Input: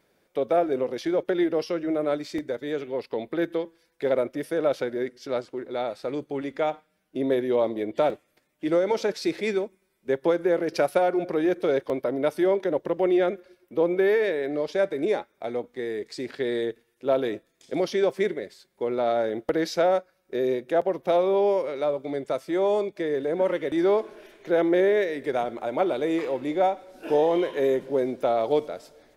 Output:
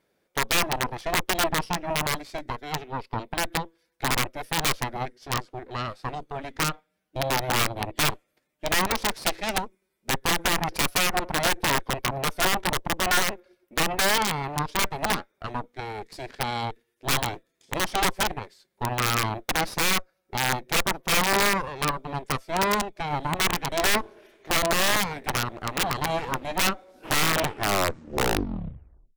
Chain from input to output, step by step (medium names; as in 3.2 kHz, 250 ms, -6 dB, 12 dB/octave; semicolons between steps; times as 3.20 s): tape stop on the ending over 1.95 s; Chebyshev shaper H 6 -10 dB, 7 -13 dB, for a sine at -9 dBFS; integer overflow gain 13 dB